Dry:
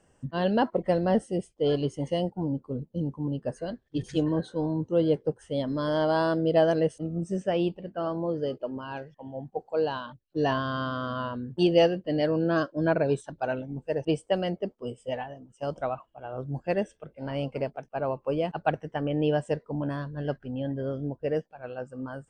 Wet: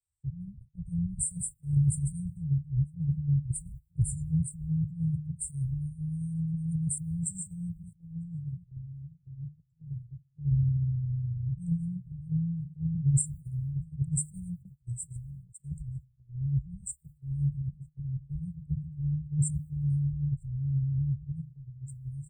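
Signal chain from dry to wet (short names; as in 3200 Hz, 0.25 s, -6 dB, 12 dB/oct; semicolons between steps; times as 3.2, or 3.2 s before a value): high shelf 6800 Hz +10.5 dB; on a send: echo 0.949 s -20.5 dB; on the sum: transient shaper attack -10 dB, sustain +4 dB; brick-wall FIR band-stop 170–7100 Hz; in parallel at +1 dB: compressor, threshold -48 dBFS, peak gain reduction 16.5 dB; on the sum: de-hum 151.6 Hz, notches 12; gate -47 dBFS, range -9 dB; bell 66 Hz +12.5 dB 2.2 oct; three-band expander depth 100%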